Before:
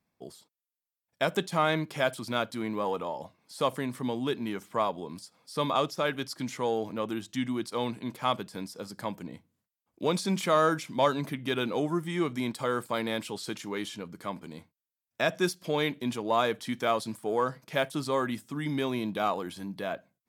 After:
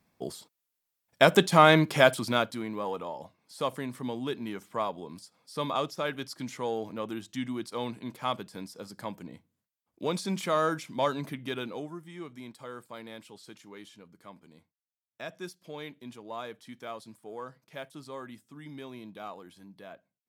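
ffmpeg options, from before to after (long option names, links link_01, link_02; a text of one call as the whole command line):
ffmpeg -i in.wav -af "volume=8dB,afade=type=out:start_time=1.98:duration=0.67:silence=0.281838,afade=type=out:start_time=11.37:duration=0.6:silence=0.316228" out.wav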